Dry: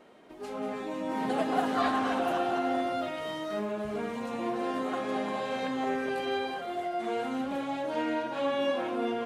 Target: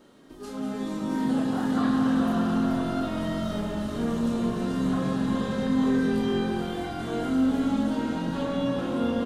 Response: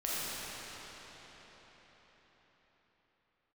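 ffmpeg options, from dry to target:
-filter_complex "[0:a]acrossover=split=2900[a][b];[b]acompressor=threshold=-50dB:ratio=4:attack=1:release=60[c];[a][c]amix=inputs=2:normalize=0,flanger=delay=3.5:depth=1.2:regen=76:speed=0.56:shape=sinusoidal,equalizer=f=2.3k:t=o:w=0.76:g=-12,asplit=2[d][e];[e]alimiter=level_in=5dB:limit=-24dB:level=0:latency=1:release=236,volume=-5dB,volume=2.5dB[f];[d][f]amix=inputs=2:normalize=0,equalizer=f=690:t=o:w=1.5:g=-12.5,asplit=2[g][h];[h]adelay=30,volume=-5.5dB[i];[g][i]amix=inputs=2:normalize=0,asplit=8[j][k][l][m][n][o][p][q];[k]adelay=429,afreqshift=-45,volume=-6.5dB[r];[l]adelay=858,afreqshift=-90,volume=-11.9dB[s];[m]adelay=1287,afreqshift=-135,volume=-17.2dB[t];[n]adelay=1716,afreqshift=-180,volume=-22.6dB[u];[o]adelay=2145,afreqshift=-225,volume=-27.9dB[v];[p]adelay=2574,afreqshift=-270,volume=-33.3dB[w];[q]adelay=3003,afreqshift=-315,volume=-38.6dB[x];[j][r][s][t][u][v][w][x]amix=inputs=8:normalize=0,asplit=2[y][z];[1:a]atrim=start_sample=2205,lowshelf=f=150:g=10.5[aa];[z][aa]afir=irnorm=-1:irlink=0,volume=-12.5dB[ab];[y][ab]amix=inputs=2:normalize=0,volume=2.5dB"

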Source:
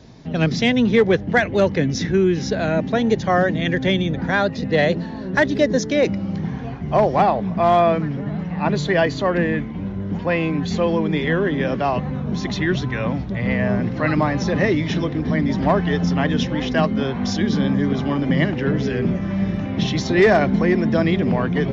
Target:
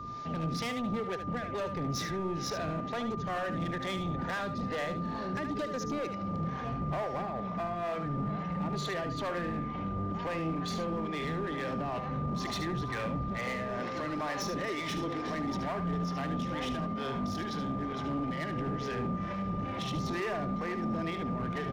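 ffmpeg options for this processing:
-filter_complex "[0:a]asettb=1/sr,asplit=3[a][b][c];[a]atrim=end=13.384[d];[b]atrim=start=13.38:end=15.57,asetpts=PTS-STARTPTS,afade=t=in:d=0.004:c=qsin,afade=t=out:st=2.186:d=0.004:c=qsin,bass=f=250:g=-12,treble=f=4k:g=6[e];[c]atrim=start=15.566[f];[d][e]acrossfade=d=0.004:c1=hsin:c2=qsin[g];[g][f]acrossfade=d=0.004:c1=qsin:c2=hsin,acompressor=threshold=-24dB:ratio=12,asoftclip=type=tanh:threshold=-24dB,acrossover=split=420[h][i];[h]aeval=exprs='val(0)*(1-0.7/2+0.7/2*cos(2*PI*2.2*n/s))':c=same[j];[i]aeval=exprs='val(0)*(1-0.7/2-0.7/2*cos(2*PI*2.2*n/s))':c=same[k];[j][k]amix=inputs=2:normalize=0,asoftclip=type=hard:threshold=-31.5dB,aeval=exprs='val(0)+0.01*sin(2*PI*1200*n/s)':c=same,aecho=1:1:74:0.355"

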